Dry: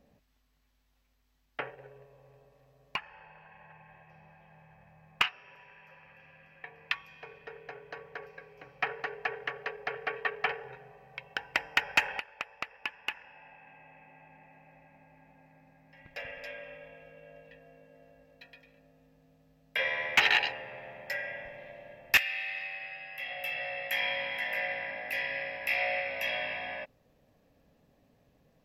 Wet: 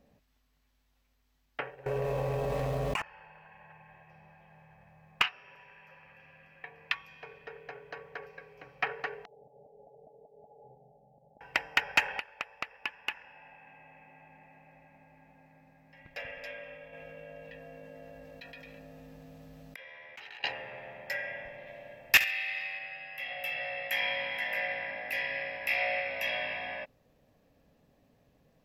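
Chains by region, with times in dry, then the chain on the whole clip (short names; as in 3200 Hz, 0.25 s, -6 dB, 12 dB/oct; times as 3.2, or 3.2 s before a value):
1.86–3.02 median filter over 9 samples + notch 1700 Hz, Q 13 + fast leveller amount 100%
9.25–11.41 compressor 10:1, threshold -42 dBFS + rippled Chebyshev low-pass 860 Hz, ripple 9 dB
16.93–20.44 flipped gate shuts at -29 dBFS, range -29 dB + fast leveller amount 70%
21.67–22.79 high shelf 3300 Hz +5 dB + flutter echo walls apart 11.6 m, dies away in 0.27 s
whole clip: dry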